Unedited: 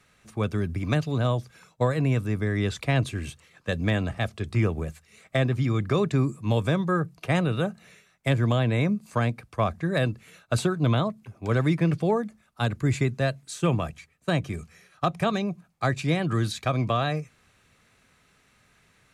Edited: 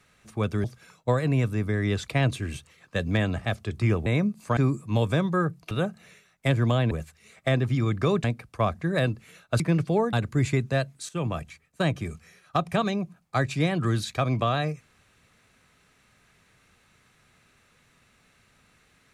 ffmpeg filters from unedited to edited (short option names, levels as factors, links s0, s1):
-filter_complex "[0:a]asplit=10[s0][s1][s2][s3][s4][s5][s6][s7][s8][s9];[s0]atrim=end=0.642[s10];[s1]atrim=start=1.368:end=4.792[s11];[s2]atrim=start=8.718:end=9.232[s12];[s3]atrim=start=6.118:end=7.262[s13];[s4]atrim=start=7.518:end=8.722[s14];[s5]atrim=start=4.788:end=6.122[s15];[s6]atrim=start=9.228:end=10.592[s16];[s7]atrim=start=11.728:end=12.262[s17];[s8]atrim=start=12.608:end=13.57,asetpts=PTS-STARTPTS,afade=t=out:st=0.958:d=0.004:c=hsin:silence=0.237137[s18];[s9]atrim=start=13.57,asetpts=PTS-STARTPTS,afade=t=in:d=0.32:silence=0.237137[s19];[s10][s11]acrossfade=d=0.004:c1=hsin:c2=hsin[s20];[s20][s12]acrossfade=d=0.004:c1=hsin:c2=hsin[s21];[s21][s13]acrossfade=d=0.004:c1=hsin:c2=hsin[s22];[s22][s14]acrossfade=d=0.004:c1=hsin:c2=hsin[s23];[s23][s15]acrossfade=d=0.004:c1=hsin:c2=hsin[s24];[s24][s16]acrossfade=d=0.004:c1=hsin:c2=hsin[s25];[s25][s17]acrossfade=d=0.004:c1=hsin:c2=hsin[s26];[s18][s19]concat=n=2:v=0:a=1[s27];[s26][s27]acrossfade=d=0.004:c1=hsin:c2=hsin"